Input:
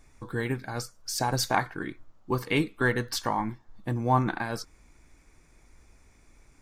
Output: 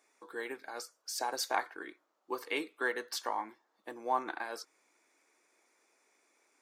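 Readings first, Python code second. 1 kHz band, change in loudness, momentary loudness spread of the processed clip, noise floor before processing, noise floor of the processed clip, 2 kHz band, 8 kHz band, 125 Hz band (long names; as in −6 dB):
−6.5 dB, −8.0 dB, 13 LU, −60 dBFS, −78 dBFS, −6.5 dB, −6.5 dB, below −40 dB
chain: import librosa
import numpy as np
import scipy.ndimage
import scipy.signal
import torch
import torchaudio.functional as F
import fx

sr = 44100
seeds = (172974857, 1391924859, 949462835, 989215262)

y = scipy.signal.sosfilt(scipy.signal.butter(4, 360.0, 'highpass', fs=sr, output='sos'), x)
y = F.gain(torch.from_numpy(y), -6.5).numpy()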